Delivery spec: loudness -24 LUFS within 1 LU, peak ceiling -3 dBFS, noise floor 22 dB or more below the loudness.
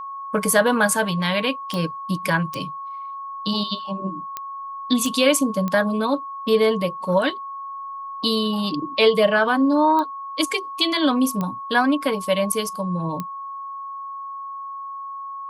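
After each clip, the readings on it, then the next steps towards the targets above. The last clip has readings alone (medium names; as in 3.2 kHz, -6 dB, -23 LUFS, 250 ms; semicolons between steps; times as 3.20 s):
clicks found 8; steady tone 1.1 kHz; tone level -30 dBFS; loudness -21.5 LUFS; peak level -4.0 dBFS; loudness target -24.0 LUFS
-> de-click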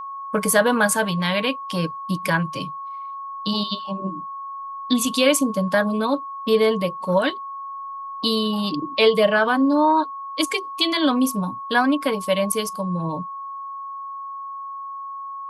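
clicks found 0; steady tone 1.1 kHz; tone level -30 dBFS
-> band-stop 1.1 kHz, Q 30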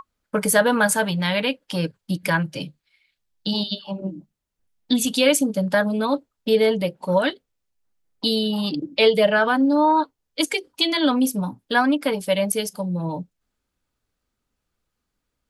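steady tone not found; loudness -21.5 LUFS; peak level -4.5 dBFS; loudness target -24.0 LUFS
-> trim -2.5 dB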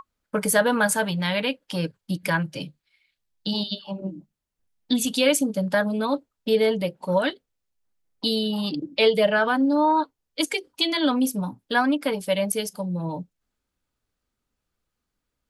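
loudness -24.0 LUFS; peak level -7.0 dBFS; noise floor -82 dBFS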